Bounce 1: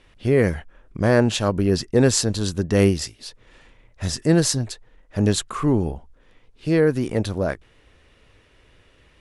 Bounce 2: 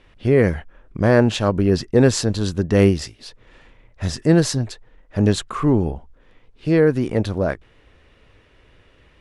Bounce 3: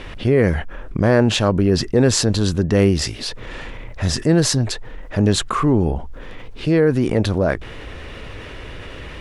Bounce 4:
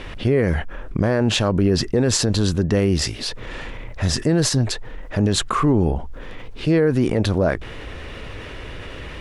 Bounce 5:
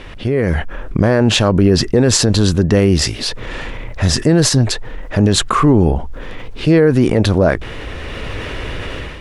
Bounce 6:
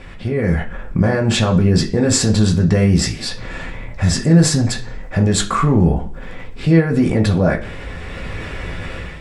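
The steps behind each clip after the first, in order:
high shelf 5800 Hz -11 dB; gain +2.5 dB
fast leveller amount 50%; gain -1.5 dB
limiter -8 dBFS, peak gain reduction 6.5 dB
AGC gain up to 9.5 dB
reverb RT60 0.45 s, pre-delay 3 ms, DRR -1.5 dB; gain -7 dB

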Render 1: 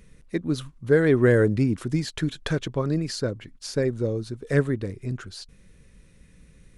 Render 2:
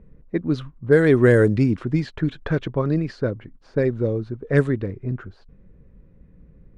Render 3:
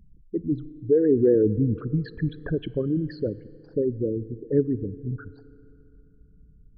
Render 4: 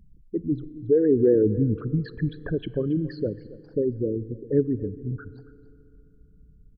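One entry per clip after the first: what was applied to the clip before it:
low-pass opened by the level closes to 770 Hz, open at -14 dBFS; gain +3.5 dB
formant sharpening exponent 3; FDN reverb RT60 3 s, high-frequency decay 0.65×, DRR 18.5 dB; gain -4 dB
echo 0.276 s -18 dB

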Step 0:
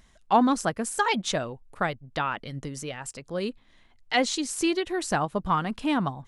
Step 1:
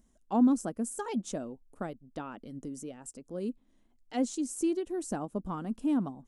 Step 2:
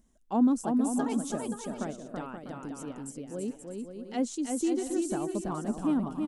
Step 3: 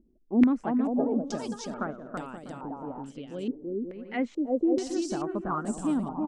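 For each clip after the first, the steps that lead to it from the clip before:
graphic EQ 125/250/1000/2000/4000/8000 Hz -8/+10/-5/-11/-11/+4 dB; gain -8 dB
bouncing-ball echo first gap 0.33 s, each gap 0.6×, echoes 5
stepped low-pass 2.3 Hz 360–8000 Hz

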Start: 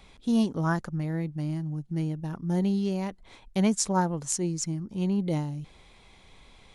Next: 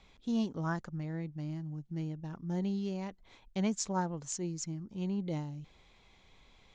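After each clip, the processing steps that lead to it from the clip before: Chebyshev low-pass 7100 Hz, order 4; gain -7 dB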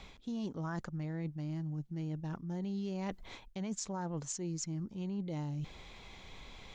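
limiter -28.5 dBFS, peak gain reduction 8.5 dB; reverse; compressor 6:1, threshold -47 dBFS, peak gain reduction 13.5 dB; reverse; gain +10.5 dB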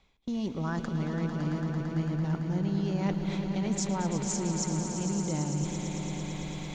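swelling echo 0.112 s, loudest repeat 5, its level -10 dB; gate with hold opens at -34 dBFS; gain +6 dB

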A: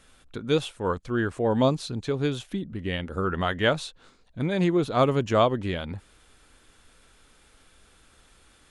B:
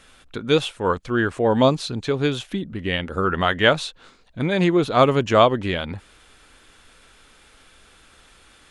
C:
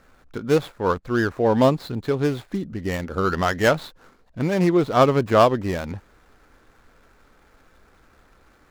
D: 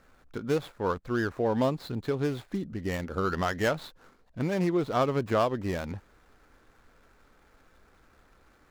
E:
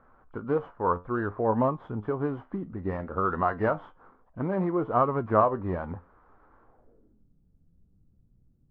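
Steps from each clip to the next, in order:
EQ curve 100 Hz 0 dB, 2700 Hz +6 dB, 10000 Hz +1 dB; gain +2.5 dB
median filter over 15 samples
compressor 2:1, threshold -20 dBFS, peak gain reduction 6 dB; gain -5 dB
nonlinear frequency compression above 2300 Hz 1.5:1; flange 0.59 Hz, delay 8 ms, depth 4 ms, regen +73%; low-pass sweep 1100 Hz -> 160 Hz, 6.62–7.28; gain +3.5 dB

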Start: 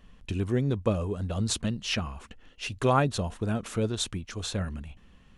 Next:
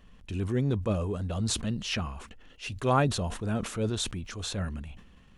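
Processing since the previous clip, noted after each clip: transient shaper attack -6 dB, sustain 0 dB; sustainer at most 90 dB/s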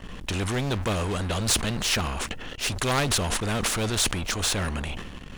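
low shelf 110 Hz +11.5 dB; sample leveller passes 2; spectral compressor 2:1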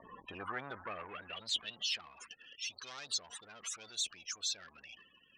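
loudest bins only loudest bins 32; soft clip -24 dBFS, distortion -17 dB; band-pass sweep 860 Hz -> 5500 Hz, 0.03–2.15; gain +3 dB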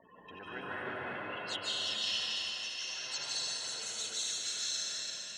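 regenerating reverse delay 0.168 s, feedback 62%, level -4.5 dB; notch comb 1200 Hz; reverb RT60 2.8 s, pre-delay 0.142 s, DRR -8 dB; gain -4.5 dB

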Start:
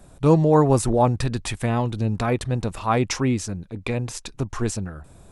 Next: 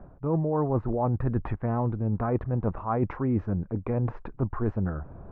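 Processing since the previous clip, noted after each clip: LPF 1400 Hz 24 dB/oct; reverse; compressor 12:1, threshold -27 dBFS, peak gain reduction 17 dB; reverse; gain +4.5 dB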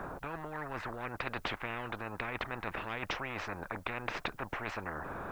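high shelf 2300 Hz +9 dB; spectral compressor 10:1; gain -3 dB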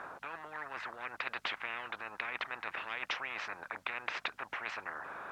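hum 50 Hz, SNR 12 dB; band-pass 2700 Hz, Q 0.55; gain +2 dB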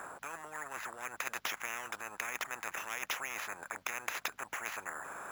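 sample-and-hold 5×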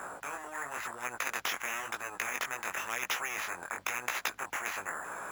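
chorus 0.97 Hz, delay 16 ms, depth 6.7 ms; gain +7 dB

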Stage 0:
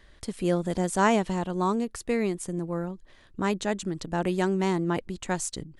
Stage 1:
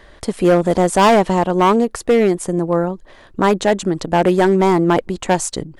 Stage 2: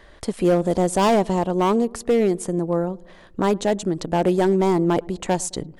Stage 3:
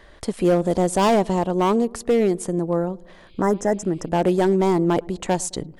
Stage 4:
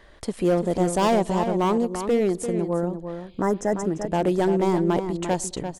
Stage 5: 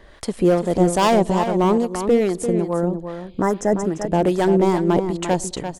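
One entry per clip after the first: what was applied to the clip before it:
bell 690 Hz +9 dB 2.3 oct; hard clip -16 dBFS, distortion -10 dB; gain +8.5 dB
dynamic EQ 1600 Hz, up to -6 dB, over -30 dBFS, Q 0.72; darkening echo 0.107 s, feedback 60%, low-pass 840 Hz, level -23 dB; gain -4 dB
spectral repair 3.28–4.06, 2100–5000 Hz
outdoor echo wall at 59 m, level -8 dB; gain -3 dB
harmonic tremolo 2.4 Hz, depth 50%, crossover 710 Hz; gain +6.5 dB

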